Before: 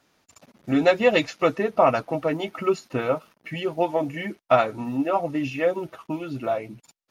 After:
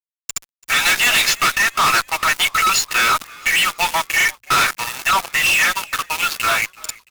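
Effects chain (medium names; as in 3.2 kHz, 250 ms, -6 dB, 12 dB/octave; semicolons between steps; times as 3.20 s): inverse Chebyshev high-pass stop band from 480 Hz, stop band 50 dB; treble shelf 4.6 kHz +6 dB; bit crusher 10-bit; fuzz box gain 47 dB, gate -47 dBFS; on a send: frequency-shifting echo 335 ms, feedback 53%, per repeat -57 Hz, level -23.5 dB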